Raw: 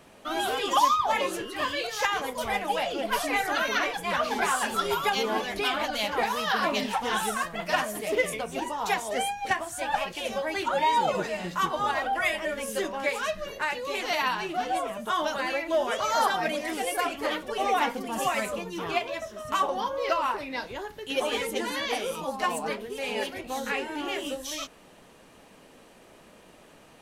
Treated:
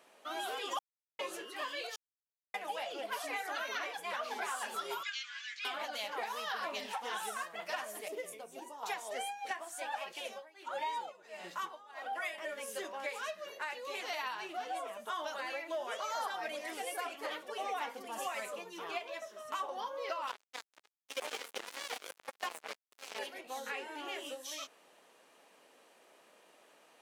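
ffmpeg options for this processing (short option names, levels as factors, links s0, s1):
-filter_complex "[0:a]asettb=1/sr,asplit=3[s0][s1][s2];[s0]atrim=end=5.034[s3];[s1]atrim=start=5.03:end=5.65,asetpts=PTS-STARTPTS,afade=t=in:d=0.004:c=qsin,afade=t=out:st=0.616:d=0.004:c=qsin,asuperpass=centerf=3400:order=12:qfactor=0.57[s4];[s2]atrim=start=5.646[s5];[s3][s4]acrossfade=d=0.004:c1=hsin:c2=qsin[s6];[s6][s5]acrossfade=d=0.004:c1=qsin:c2=hsin,asettb=1/sr,asplit=3[s7][s8][s9];[s7]atrim=end=8.084[s10];[s8]atrim=start=8.08:end=8.83,asetpts=PTS-STARTPTS,afade=t=in:d=0.004:c=qsin,afade=t=out:st=0.746:d=0.004:c=qsin,equalizer=f=2000:w=0.35:g=-11.5[s11];[s9]atrim=start=8.826[s12];[s10][s11]acrossfade=d=0.004:c1=hsin:c2=qsin[s13];[s13][s12]acrossfade=d=0.004:c1=qsin:c2=hsin,asettb=1/sr,asplit=3[s14][s15][s16];[s14]atrim=end=10.194[s17];[s15]atrim=start=10.19:end=12.38,asetpts=PTS-STARTPTS,afade=t=in:d=0.004:c=qsin,afade=t=out:st=2.186:d=0.004:c=qsin,tremolo=f=1.5:d=0.93[s18];[s16]atrim=start=12.376[s19];[s17][s18]acrossfade=d=0.004:c1=hsin:c2=qsin[s20];[s20][s19]acrossfade=d=0.004:c1=qsin:c2=hsin,asettb=1/sr,asplit=3[s21][s22][s23];[s21]atrim=end=20.274[s24];[s22]atrim=start=20.27:end=23.19,asetpts=PTS-STARTPTS,afade=t=in:d=0.004:c=qsin,afade=t=out:st=2.916:d=0.004:c=qsin,acrusher=bits=3:mix=0:aa=0.5[s25];[s23]atrim=start=23.186[s26];[s24][s25]acrossfade=d=0.004:c1=hsin:c2=qsin[s27];[s27][s26]acrossfade=d=0.004:c1=qsin:c2=hsin,asplit=5[s28][s29][s30][s31][s32];[s28]atrim=end=0.79,asetpts=PTS-STARTPTS,afade=t=out:st=0.786:d=0.004:c=hsin[s33];[s29]atrim=start=0.79:end=1.19,asetpts=PTS-STARTPTS,volume=0[s34];[s30]atrim=start=1.19:end=1.96,asetpts=PTS-STARTPTS,afade=t=in:d=0.004:c=hsin,afade=t=out:st=0.766:d=0.004:c=hsin[s35];[s31]atrim=start=1.96:end=2.54,asetpts=PTS-STARTPTS,volume=0[s36];[s32]atrim=start=2.54,asetpts=PTS-STARTPTS,afade=t=in:d=0.004:c=hsin[s37];[s33][s34][s35][s36][s37]concat=n=5:v=0:a=1,highpass=440,acompressor=threshold=0.0398:ratio=2.5,volume=0.398"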